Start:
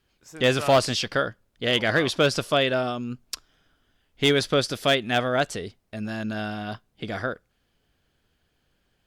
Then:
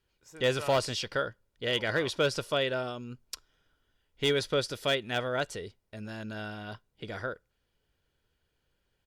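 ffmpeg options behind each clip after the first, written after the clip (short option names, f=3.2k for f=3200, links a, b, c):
-af "aecho=1:1:2.1:0.34,volume=-7.5dB"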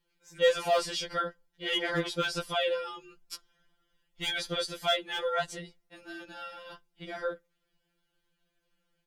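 -af "afftfilt=real='re*2.83*eq(mod(b,8),0)':imag='im*2.83*eq(mod(b,8),0)':win_size=2048:overlap=0.75,volume=2dB"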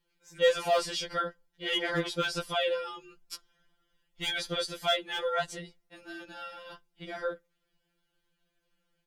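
-af anull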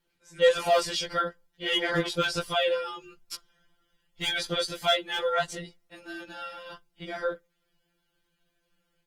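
-af "volume=3.5dB" -ar 48000 -c:a libopus -b:a 20k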